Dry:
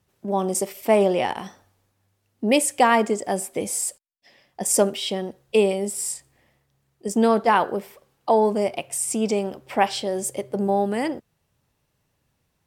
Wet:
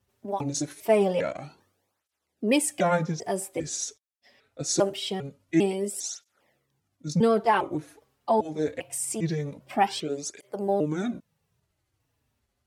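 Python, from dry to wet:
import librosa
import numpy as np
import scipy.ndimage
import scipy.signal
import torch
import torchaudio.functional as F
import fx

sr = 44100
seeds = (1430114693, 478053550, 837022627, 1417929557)

y = fx.pitch_trill(x, sr, semitones=-5.0, every_ms=400)
y = fx.flanger_cancel(y, sr, hz=0.24, depth_ms=6.5)
y = y * 10.0 ** (-1.5 / 20.0)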